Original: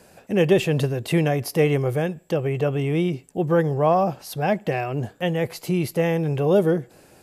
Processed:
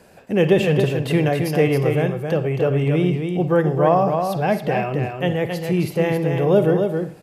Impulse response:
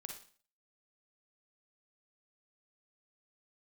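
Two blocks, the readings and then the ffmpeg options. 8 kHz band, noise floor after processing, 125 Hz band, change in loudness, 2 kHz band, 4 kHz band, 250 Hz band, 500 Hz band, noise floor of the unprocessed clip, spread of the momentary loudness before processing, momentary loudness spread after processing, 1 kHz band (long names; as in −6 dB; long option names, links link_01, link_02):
can't be measured, −44 dBFS, +3.0 dB, +3.0 dB, +3.0 dB, +1.5 dB, +3.0 dB, +3.0 dB, −53 dBFS, 7 LU, 6 LU, +3.0 dB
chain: -filter_complex "[0:a]aecho=1:1:271:0.531,asplit=2[link_01][link_02];[1:a]atrim=start_sample=2205,lowpass=4700[link_03];[link_02][link_03]afir=irnorm=-1:irlink=0,volume=2dB[link_04];[link_01][link_04]amix=inputs=2:normalize=0,volume=-2.5dB"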